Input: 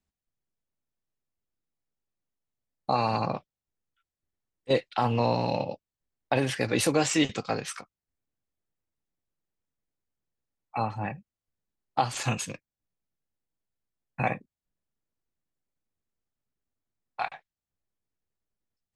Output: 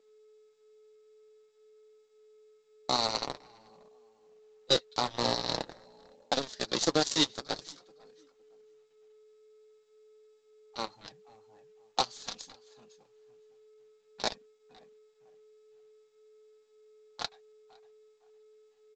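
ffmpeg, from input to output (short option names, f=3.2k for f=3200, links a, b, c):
-filter_complex "[0:a]asplit=2[a][b];[b]adelay=509,lowpass=f=1.9k:p=1,volume=-11dB,asplit=2[c][d];[d]adelay=509,lowpass=f=1.9k:p=1,volume=0.2,asplit=2[e][f];[f]adelay=509,lowpass=f=1.9k:p=1,volume=0.2[g];[c][e][g]amix=inputs=3:normalize=0[h];[a][h]amix=inputs=2:normalize=0,aeval=exprs='val(0)+0.00891*sin(2*PI*430*n/s)':c=same,highpass=230,aeval=exprs='0.282*(cos(1*acos(clip(val(0)/0.282,-1,1)))-cos(1*PI/2))+0.00224*(cos(6*acos(clip(val(0)/0.282,-1,1)))-cos(6*PI/2))+0.0501*(cos(7*acos(clip(val(0)/0.282,-1,1)))-cos(7*PI/2))':c=same,highshelf=f=3.2k:t=q:w=3:g=7,aresample=16000,acrusher=bits=4:mode=log:mix=0:aa=0.000001,aresample=44100,flanger=delay=3.5:depth=4.3:regen=-37:speed=0.48:shape=triangular"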